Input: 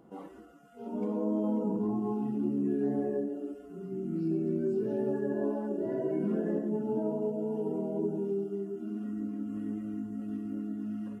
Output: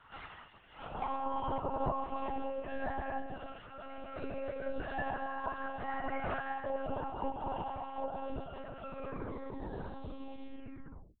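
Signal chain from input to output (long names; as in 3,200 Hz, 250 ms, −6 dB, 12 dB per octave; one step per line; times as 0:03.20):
turntable brake at the end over 2.45 s
gate on every frequency bin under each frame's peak −20 dB weak
one-pitch LPC vocoder at 8 kHz 270 Hz
level +15.5 dB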